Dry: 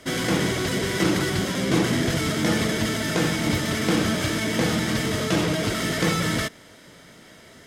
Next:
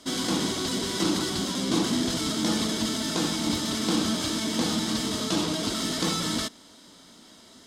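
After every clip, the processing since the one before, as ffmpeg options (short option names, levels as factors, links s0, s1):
-af "equalizer=f=125:t=o:w=1:g=-8,equalizer=f=250:t=o:w=1:g=9,equalizer=f=500:t=o:w=1:g=-4,equalizer=f=1000:t=o:w=1:g=7,equalizer=f=2000:t=o:w=1:g=-8,equalizer=f=4000:t=o:w=1:g=10,equalizer=f=8000:t=o:w=1:g=6,volume=0.447"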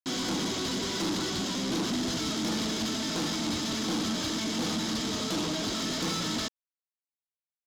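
-af "aresample=16000,acrusher=bits=5:mix=0:aa=0.000001,aresample=44100,asoftclip=type=tanh:threshold=0.0501"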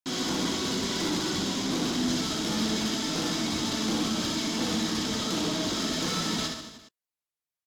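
-af "aecho=1:1:60|129|208.4|299.6|404.5:0.631|0.398|0.251|0.158|0.1" -ar 48000 -c:a aac -b:a 96k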